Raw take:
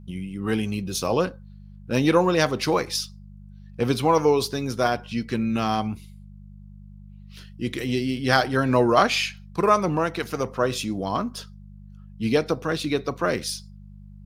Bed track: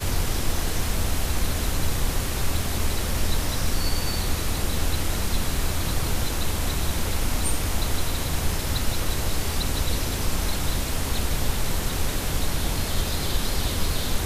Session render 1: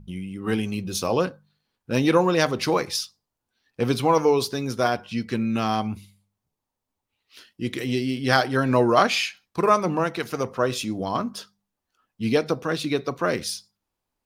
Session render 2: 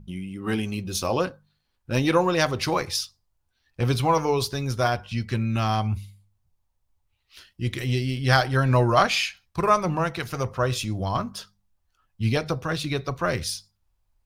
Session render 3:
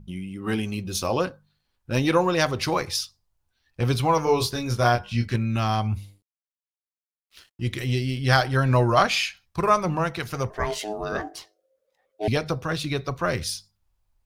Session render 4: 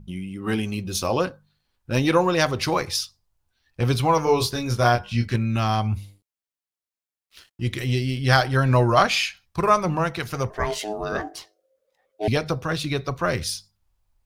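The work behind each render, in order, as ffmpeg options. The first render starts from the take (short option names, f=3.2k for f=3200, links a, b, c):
-af "bandreject=f=50:t=h:w=4,bandreject=f=100:t=h:w=4,bandreject=f=150:t=h:w=4,bandreject=f=200:t=h:w=4"
-af "bandreject=f=460:w=12,asubboost=boost=11.5:cutoff=74"
-filter_complex "[0:a]asettb=1/sr,asplit=3[a][b][c];[a]atrim=end=4.244[d];[b]atrim=start=4.24:end=5.36,asetpts=PTS-STARTPTS,afade=t=in:d=0.004:c=qsin,afade=t=out:st=1.116:d=0.004:c=qsin,asplit=2[e][f];[f]adelay=25,volume=-3dB[g];[e][g]amix=inputs=2:normalize=0,atrim=end_sample=49392[h];[c]atrim=start=5.356[i];[d][h]acrossfade=d=0.004:c1=hsin:c2=qsin[j];[j][i]acrossfade=d=0.004:c1=qsin:c2=hsin,asettb=1/sr,asplit=3[k][l][m];[k]atrim=end=5.954[n];[l]atrim=start=5.95:end=7.64,asetpts=PTS-STARTPTS,afade=t=in:d=0.004:c=qsin,afade=t=out:st=1.686:d=0.004:c=qsin,aeval=exprs='sgn(val(0))*max(abs(val(0))-0.0015,0)':c=same[o];[m]atrim=start=7.636[p];[n][o]acrossfade=d=0.004:c1=hsin:c2=qsin[q];[q][p]acrossfade=d=0.004:c1=qsin:c2=hsin,asettb=1/sr,asplit=3[r][s][t];[r]atrim=end=10.504[u];[s]atrim=start=10.5:end=12.28,asetpts=PTS-STARTPTS,afade=t=in:d=0.004:c=qsin,afade=t=out:st=1.776:d=0.004:c=qsin,aeval=exprs='val(0)*sin(2*PI*530*n/s)':c=same[v];[t]atrim=start=12.276[w];[u][v]acrossfade=d=0.004:c1=hsin:c2=qsin[x];[x][w]acrossfade=d=0.004:c1=qsin:c2=hsin"
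-af "volume=1.5dB"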